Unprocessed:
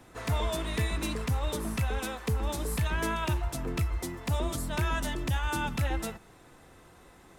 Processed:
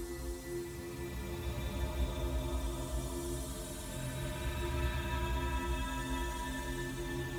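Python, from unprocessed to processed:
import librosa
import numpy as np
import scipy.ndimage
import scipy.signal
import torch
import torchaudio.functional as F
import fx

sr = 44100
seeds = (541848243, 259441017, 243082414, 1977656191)

y = fx.stiff_resonator(x, sr, f0_hz=63.0, decay_s=0.26, stiffness=0.008)
y = fx.paulstretch(y, sr, seeds[0], factor=6.2, window_s=0.5, from_s=4.03)
y = fx.echo_crushed(y, sr, ms=193, feedback_pct=80, bits=9, wet_db=-10.0)
y = y * librosa.db_to_amplitude(-1.5)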